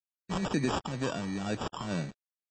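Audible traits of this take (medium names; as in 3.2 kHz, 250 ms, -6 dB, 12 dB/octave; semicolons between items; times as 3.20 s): a quantiser's noise floor 8-bit, dither none; phasing stages 2, 2.1 Hz, lowest notch 470–2900 Hz; aliases and images of a low sample rate 2.1 kHz, jitter 0%; MP3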